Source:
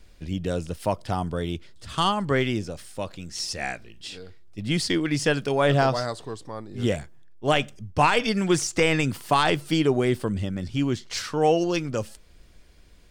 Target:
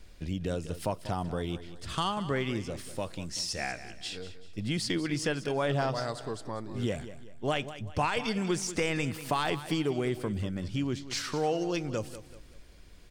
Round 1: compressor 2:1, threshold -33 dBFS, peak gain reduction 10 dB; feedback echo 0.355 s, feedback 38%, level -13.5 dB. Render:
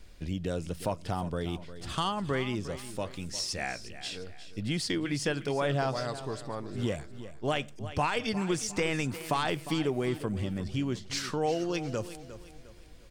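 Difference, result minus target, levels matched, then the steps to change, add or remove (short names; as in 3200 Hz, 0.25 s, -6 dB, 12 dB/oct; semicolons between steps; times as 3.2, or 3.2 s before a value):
echo 0.164 s late
change: feedback echo 0.191 s, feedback 38%, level -13.5 dB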